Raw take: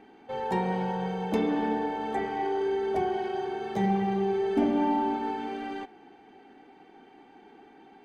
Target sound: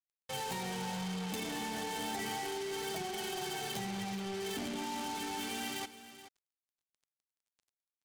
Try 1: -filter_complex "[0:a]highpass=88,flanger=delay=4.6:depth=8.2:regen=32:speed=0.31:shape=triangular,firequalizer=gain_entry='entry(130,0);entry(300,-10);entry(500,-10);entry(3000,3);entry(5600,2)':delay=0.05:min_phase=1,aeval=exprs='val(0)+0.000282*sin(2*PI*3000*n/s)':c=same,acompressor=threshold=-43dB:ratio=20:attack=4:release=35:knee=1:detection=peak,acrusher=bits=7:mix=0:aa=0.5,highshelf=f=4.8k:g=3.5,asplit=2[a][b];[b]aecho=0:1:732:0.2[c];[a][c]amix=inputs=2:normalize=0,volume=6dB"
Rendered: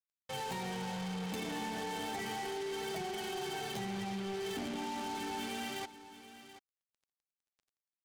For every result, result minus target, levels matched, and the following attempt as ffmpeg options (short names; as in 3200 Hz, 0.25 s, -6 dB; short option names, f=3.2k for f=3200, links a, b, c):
echo 0.306 s late; 8000 Hz band -3.5 dB
-filter_complex "[0:a]highpass=88,flanger=delay=4.6:depth=8.2:regen=32:speed=0.31:shape=triangular,firequalizer=gain_entry='entry(130,0);entry(300,-10);entry(500,-10);entry(3000,3);entry(5600,2)':delay=0.05:min_phase=1,aeval=exprs='val(0)+0.000282*sin(2*PI*3000*n/s)':c=same,acompressor=threshold=-43dB:ratio=20:attack=4:release=35:knee=1:detection=peak,acrusher=bits=7:mix=0:aa=0.5,highshelf=f=4.8k:g=3.5,asplit=2[a][b];[b]aecho=0:1:426:0.2[c];[a][c]amix=inputs=2:normalize=0,volume=6dB"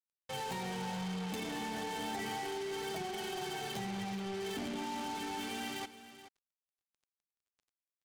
8000 Hz band -3.5 dB
-filter_complex "[0:a]highpass=88,flanger=delay=4.6:depth=8.2:regen=32:speed=0.31:shape=triangular,firequalizer=gain_entry='entry(130,0);entry(300,-10);entry(500,-10);entry(3000,3);entry(5600,2)':delay=0.05:min_phase=1,aeval=exprs='val(0)+0.000282*sin(2*PI*3000*n/s)':c=same,acompressor=threshold=-43dB:ratio=20:attack=4:release=35:knee=1:detection=peak,acrusher=bits=7:mix=0:aa=0.5,highshelf=f=4.8k:g=10,asplit=2[a][b];[b]aecho=0:1:426:0.2[c];[a][c]amix=inputs=2:normalize=0,volume=6dB"